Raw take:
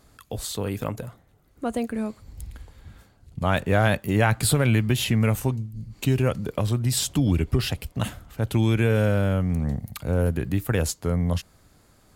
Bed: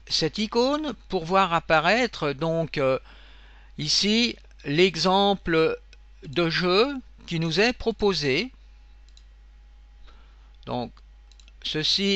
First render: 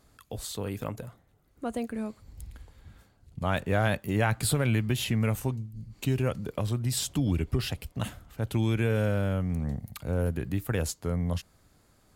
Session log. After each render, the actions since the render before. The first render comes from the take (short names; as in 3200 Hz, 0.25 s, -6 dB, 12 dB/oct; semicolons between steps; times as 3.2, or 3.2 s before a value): gain -5.5 dB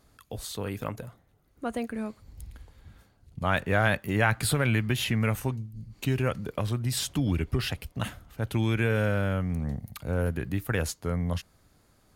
notch 7600 Hz, Q 12; dynamic EQ 1700 Hz, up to +6 dB, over -46 dBFS, Q 0.9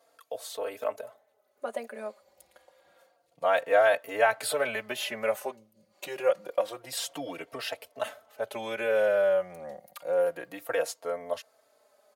resonant high-pass 580 Hz, resonance Q 4.9; endless flanger 3.9 ms -0.28 Hz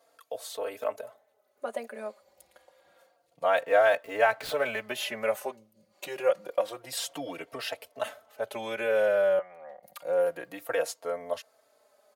3.64–4.8 median filter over 5 samples; 9.39–9.83 three-band isolator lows -18 dB, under 550 Hz, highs -22 dB, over 2800 Hz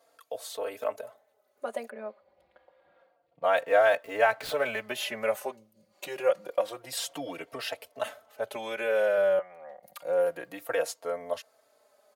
1.9–3.44 air absorption 380 m; 8.56–9.18 HPF 240 Hz 6 dB/oct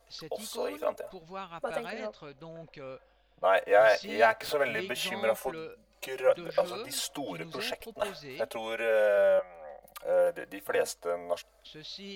add bed -20.5 dB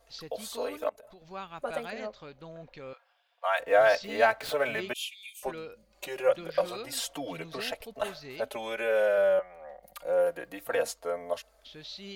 0.89–1.31 compressor, threshold -49 dBFS; 2.93–3.6 inverse Chebyshev high-pass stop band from 220 Hz, stop band 60 dB; 4.93–5.43 rippled Chebyshev high-pass 2300 Hz, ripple 6 dB